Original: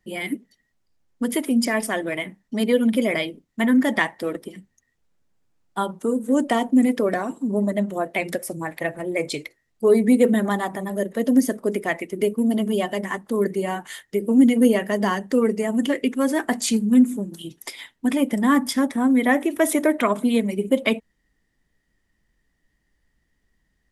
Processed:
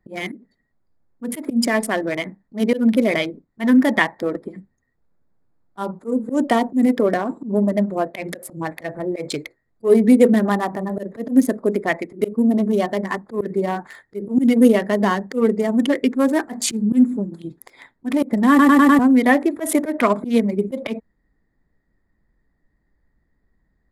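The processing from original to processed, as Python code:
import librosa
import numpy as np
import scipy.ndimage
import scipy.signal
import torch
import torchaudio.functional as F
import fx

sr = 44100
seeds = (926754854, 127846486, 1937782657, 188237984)

y = fx.edit(x, sr, fx.stutter_over(start_s=18.49, slice_s=0.1, count=5), tone=tone)
y = fx.wiener(y, sr, points=15)
y = fx.auto_swell(y, sr, attack_ms=112.0)
y = F.gain(torch.from_numpy(y), 4.0).numpy()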